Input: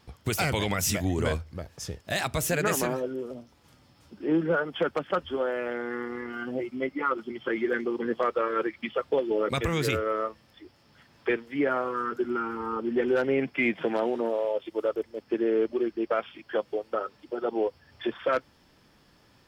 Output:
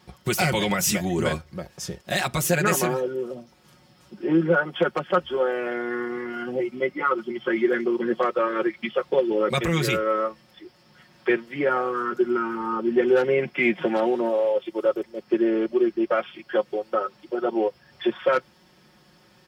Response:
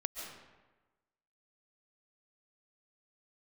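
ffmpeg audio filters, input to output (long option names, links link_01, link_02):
-af "highpass=66,aecho=1:1:5.5:0.74,volume=2.5dB"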